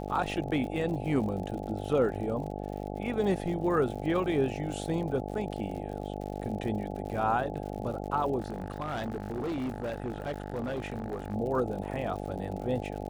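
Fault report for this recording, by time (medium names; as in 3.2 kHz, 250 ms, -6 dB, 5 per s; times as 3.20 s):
buzz 50 Hz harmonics 17 -37 dBFS
crackle 77 per s -39 dBFS
8.40–11.35 s: clipped -29.5 dBFS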